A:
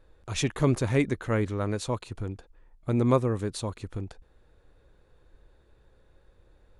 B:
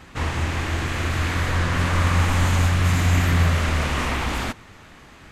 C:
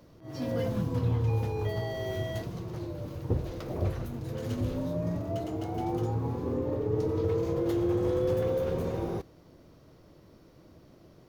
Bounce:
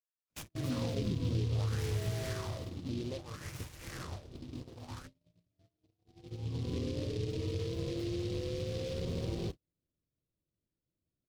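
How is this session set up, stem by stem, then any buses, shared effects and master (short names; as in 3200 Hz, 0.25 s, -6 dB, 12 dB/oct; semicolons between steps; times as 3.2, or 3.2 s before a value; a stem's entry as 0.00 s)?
-3.5 dB, 0.00 s, bus A, no send, limiter -20 dBFS, peak gain reduction 8.5 dB
-12.5 dB, 0.55 s, bus A, no send, dry
2.23 s -1 dB -> 2.73 s -10.5 dB -> 6.03 s -10.5 dB -> 6.71 s -1.5 dB, 0.30 s, no bus, no send, notch 860 Hz, Q 5.6; compressor 20:1, threshold -37 dBFS, peak gain reduction 15.5 dB
bus A: 0.0 dB, wah 0.61 Hz 280–3100 Hz, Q 3.7; compressor 4:1, threshold -43 dBFS, peak gain reduction 8.5 dB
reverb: off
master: gate -46 dBFS, range -40 dB; low shelf 290 Hz +11 dB; noise-modulated delay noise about 3500 Hz, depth 0.086 ms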